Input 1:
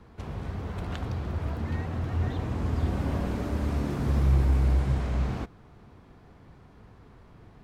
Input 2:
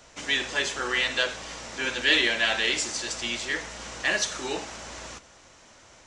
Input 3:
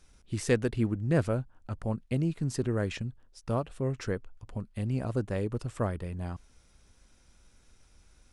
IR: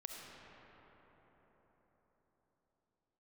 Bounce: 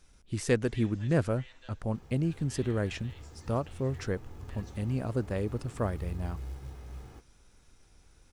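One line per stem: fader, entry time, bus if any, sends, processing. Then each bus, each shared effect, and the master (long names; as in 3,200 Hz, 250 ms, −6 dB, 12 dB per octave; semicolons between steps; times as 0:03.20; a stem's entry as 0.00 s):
−18.5 dB, 1.75 s, no send, log-companded quantiser 6 bits; comb filter 2.4 ms, depth 45%
−19.0 dB, 0.45 s, no send, automatic ducking −13 dB, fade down 1.75 s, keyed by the third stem
−0.5 dB, 0.00 s, no send, no processing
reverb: not used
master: no processing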